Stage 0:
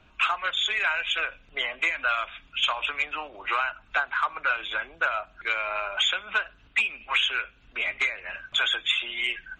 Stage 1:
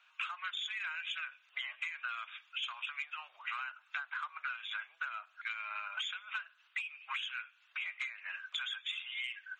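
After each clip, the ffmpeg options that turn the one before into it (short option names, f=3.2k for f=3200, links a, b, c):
-af "highpass=f=1.1k:w=0.5412,highpass=f=1.1k:w=1.3066,acompressor=threshold=-33dB:ratio=6,volume=-4dB"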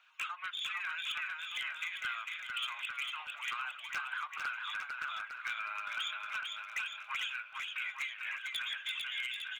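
-filter_complex "[0:a]aphaser=in_gain=1:out_gain=1:delay=2.6:decay=0.25:speed=1.7:type=triangular,aeval=exprs='0.0316*(abs(mod(val(0)/0.0316+3,4)-2)-1)':c=same,asplit=2[a][b];[b]aecho=0:1:450|855|1220|1548|1843:0.631|0.398|0.251|0.158|0.1[c];[a][c]amix=inputs=2:normalize=0"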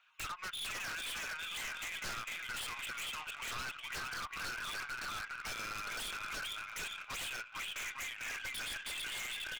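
-af "aeval=exprs='0.0133*(abs(mod(val(0)/0.0133+3,4)-2)-1)':c=same,lowshelf=f=67:g=11.5,aeval=exprs='0.0178*(cos(1*acos(clip(val(0)/0.0178,-1,1)))-cos(1*PI/2))+0.00251*(cos(3*acos(clip(val(0)/0.0178,-1,1)))-cos(3*PI/2))+0.000631*(cos(4*acos(clip(val(0)/0.0178,-1,1)))-cos(4*PI/2))+0.000316*(cos(7*acos(clip(val(0)/0.0178,-1,1)))-cos(7*PI/2))':c=same,volume=3.5dB"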